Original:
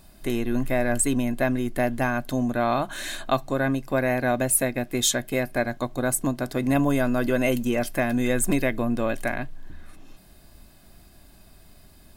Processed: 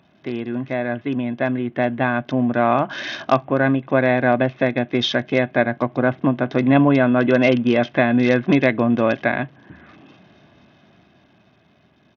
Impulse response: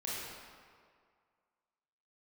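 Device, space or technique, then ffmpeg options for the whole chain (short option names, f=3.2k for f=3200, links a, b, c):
Bluetooth headset: -af "highpass=f=110:w=0.5412,highpass=f=110:w=1.3066,dynaudnorm=f=330:g=11:m=14dB,aresample=8000,aresample=44100" -ar 48000 -c:a sbc -b:a 64k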